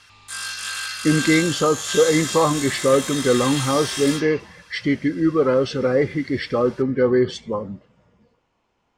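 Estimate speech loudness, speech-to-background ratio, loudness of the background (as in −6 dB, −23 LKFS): −20.5 LKFS, 6.0 dB, −26.5 LKFS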